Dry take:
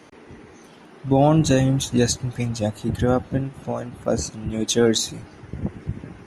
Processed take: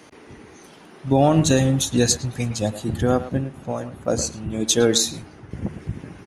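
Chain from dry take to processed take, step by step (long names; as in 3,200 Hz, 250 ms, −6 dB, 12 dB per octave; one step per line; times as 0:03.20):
high-shelf EQ 4,400 Hz +6.5 dB
hum removal 76.29 Hz, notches 3
far-end echo of a speakerphone 110 ms, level −12 dB
0:02.94–0:05.51: one half of a high-frequency compander decoder only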